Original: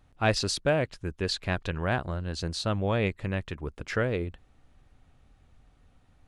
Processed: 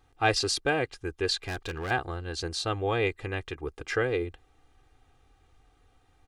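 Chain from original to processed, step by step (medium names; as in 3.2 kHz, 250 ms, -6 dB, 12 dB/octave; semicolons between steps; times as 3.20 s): bass shelf 160 Hz -8.5 dB; comb 2.5 ms, depth 78%; 1.37–1.91 s: hard clipper -29.5 dBFS, distortion -17 dB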